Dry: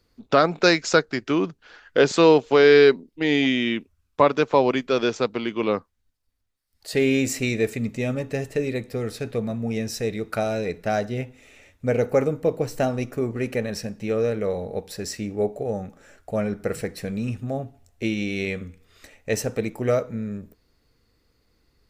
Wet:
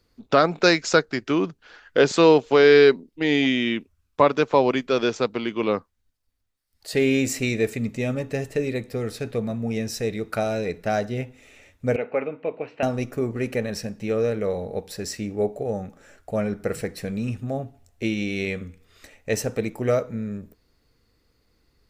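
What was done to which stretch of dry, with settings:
11.96–12.83 s: cabinet simulation 350–2800 Hz, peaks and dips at 350 Hz -6 dB, 500 Hz -5 dB, 810 Hz -3 dB, 1.2 kHz -3 dB, 1.7 kHz -3 dB, 2.6 kHz +9 dB

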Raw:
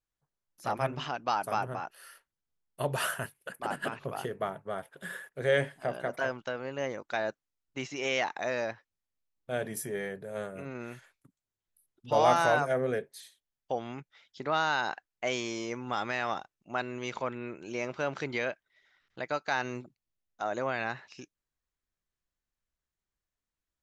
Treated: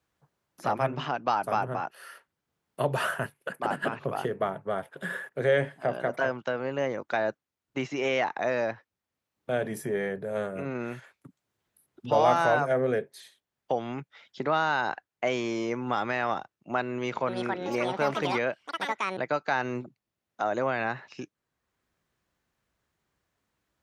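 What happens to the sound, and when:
16.89–19.73 s: ever faster or slower copies 384 ms, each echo +7 st, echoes 2
whole clip: high-pass 88 Hz; treble shelf 3.3 kHz -11 dB; three bands compressed up and down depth 40%; trim +5 dB

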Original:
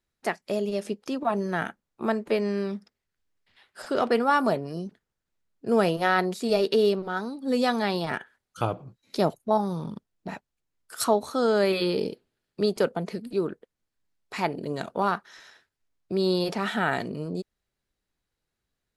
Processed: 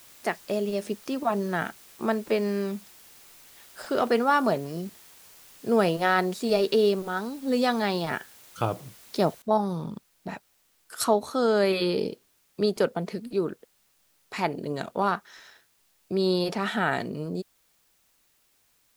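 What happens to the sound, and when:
9.42 s: noise floor step -52 dB -67 dB

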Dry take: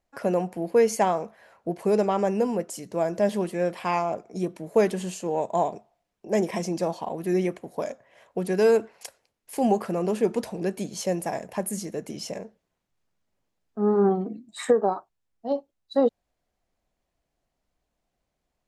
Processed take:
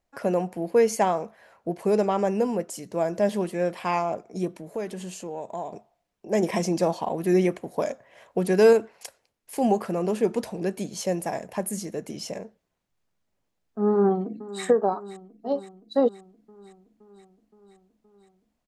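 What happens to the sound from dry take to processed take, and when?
4.54–5.73 s: compression 2:1, threshold -36 dBFS
6.43–8.73 s: gain +3.5 dB
13.88–14.64 s: echo throw 520 ms, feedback 70%, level -16.5 dB

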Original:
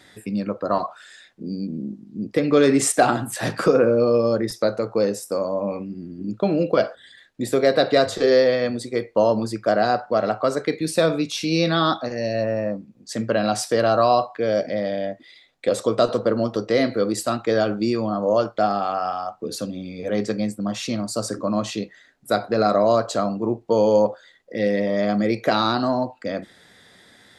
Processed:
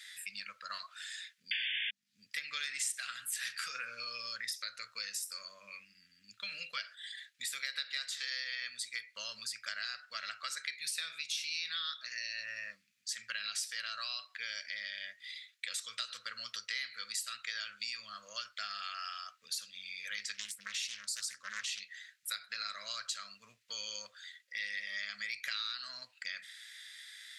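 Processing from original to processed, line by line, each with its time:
1.51–1.91 s: painted sound noise 1.5–3.6 kHz -23 dBFS
20.34–21.80 s: loudspeaker Doppler distortion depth 0.63 ms
whole clip: inverse Chebyshev high-pass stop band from 900 Hz, stop band 40 dB; compression 4:1, threshold -40 dBFS; trim +3 dB

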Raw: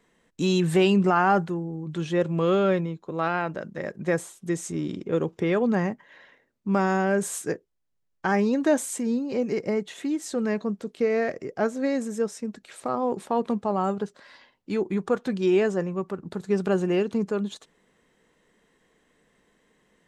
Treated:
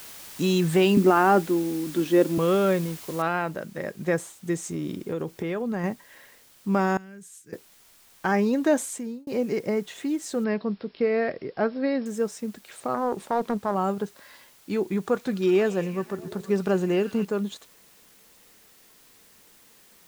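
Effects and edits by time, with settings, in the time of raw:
0.97–2.38 s: resonant high-pass 270 Hz
3.22 s: noise floor step -43 dB -56 dB
4.71–5.84 s: compression, threshold -25 dBFS
6.97–7.53 s: amplifier tone stack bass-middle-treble 6-0-2
8.82–9.27 s: fade out
10.44–12.06 s: brick-wall FIR low-pass 5.5 kHz
12.94–13.75 s: loudspeaker Doppler distortion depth 0.39 ms
14.94–17.25 s: repeats whose band climbs or falls 119 ms, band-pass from 5.2 kHz, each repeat -0.7 oct, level -6.5 dB

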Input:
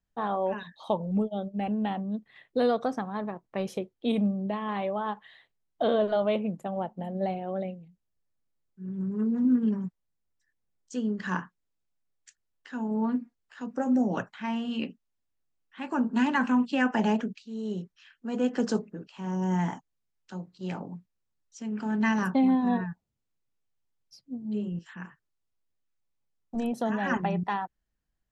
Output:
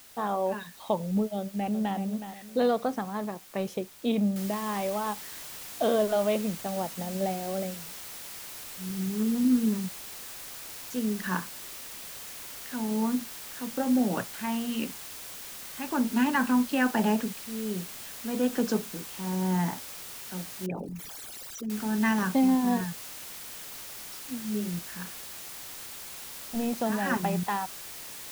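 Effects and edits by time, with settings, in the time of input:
1.37–1.96 s: echo throw 370 ms, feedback 40%, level -10 dB
4.36 s: noise floor step -52 dB -42 dB
20.66–21.70 s: resonances exaggerated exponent 3

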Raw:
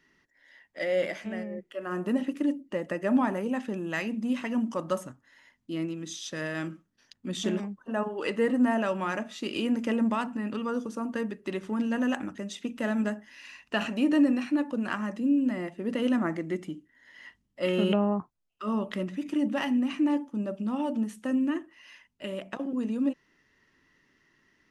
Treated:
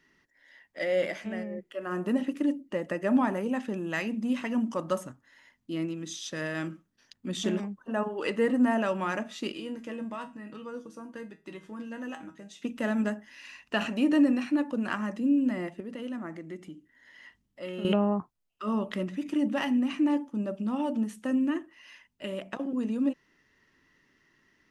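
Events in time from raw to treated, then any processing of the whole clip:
9.52–12.62 s: feedback comb 160 Hz, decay 0.26 s, mix 80%
15.80–17.85 s: compression 1.5:1, threshold -52 dBFS

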